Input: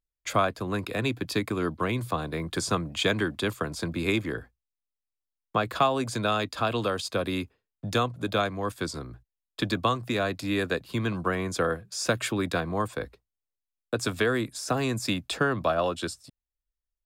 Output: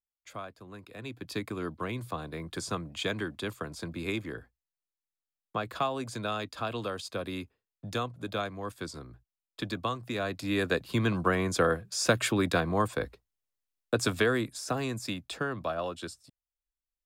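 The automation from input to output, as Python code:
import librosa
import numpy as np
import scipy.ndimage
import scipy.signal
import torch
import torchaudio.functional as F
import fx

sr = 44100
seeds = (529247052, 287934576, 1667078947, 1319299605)

y = fx.gain(x, sr, db=fx.line((0.88, -17.0), (1.36, -7.0), (10.03, -7.0), (10.83, 1.0), (13.99, 1.0), (15.17, -7.5)))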